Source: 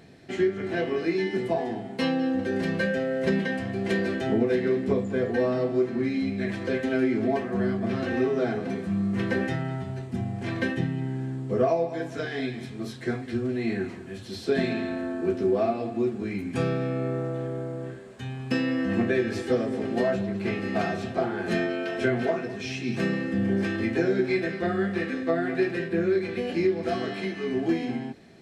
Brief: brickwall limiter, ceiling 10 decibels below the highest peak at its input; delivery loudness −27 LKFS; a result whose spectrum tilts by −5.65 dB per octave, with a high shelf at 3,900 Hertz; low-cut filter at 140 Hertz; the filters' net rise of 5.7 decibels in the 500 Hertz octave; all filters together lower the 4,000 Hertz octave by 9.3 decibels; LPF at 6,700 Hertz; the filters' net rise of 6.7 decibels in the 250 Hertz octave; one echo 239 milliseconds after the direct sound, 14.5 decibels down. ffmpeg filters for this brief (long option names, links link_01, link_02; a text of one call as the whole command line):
ffmpeg -i in.wav -af "highpass=140,lowpass=6700,equalizer=frequency=250:width_type=o:gain=7.5,equalizer=frequency=500:width_type=o:gain=5,highshelf=frequency=3900:gain=-7,equalizer=frequency=4000:width_type=o:gain=-8.5,alimiter=limit=-14.5dB:level=0:latency=1,aecho=1:1:239:0.188,volume=-3dB" out.wav